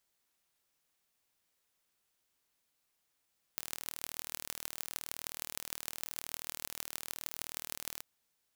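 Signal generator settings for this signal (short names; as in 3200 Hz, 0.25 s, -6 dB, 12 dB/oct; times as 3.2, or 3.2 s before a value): pulse train 39.1/s, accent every 6, -8.5 dBFS 4.43 s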